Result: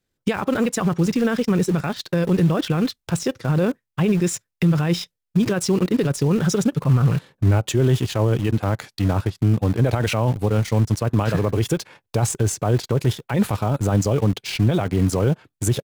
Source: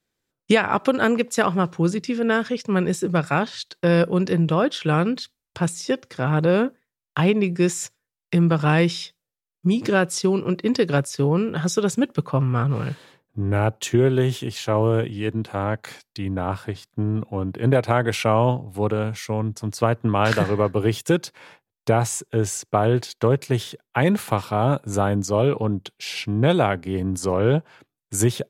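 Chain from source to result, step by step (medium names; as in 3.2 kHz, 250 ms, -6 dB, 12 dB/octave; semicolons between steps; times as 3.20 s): in parallel at -6.5 dB: bit crusher 5-bit; on the sum: peak limiter -12.5 dBFS, peak gain reduction 11.5 dB; bass shelf 140 Hz +9.5 dB; tempo 1.8×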